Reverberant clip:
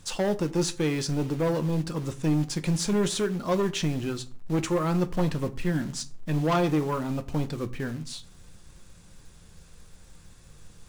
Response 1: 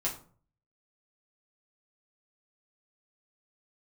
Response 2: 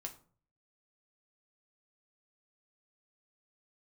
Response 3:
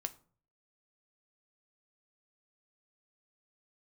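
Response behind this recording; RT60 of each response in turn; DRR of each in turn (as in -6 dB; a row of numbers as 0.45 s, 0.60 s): 3; 0.45 s, 0.45 s, 0.45 s; -5.0 dB, 2.5 dB, 9.0 dB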